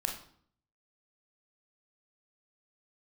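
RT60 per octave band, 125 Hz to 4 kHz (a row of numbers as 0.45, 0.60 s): 0.80, 0.75, 0.55, 0.55, 0.50, 0.45 s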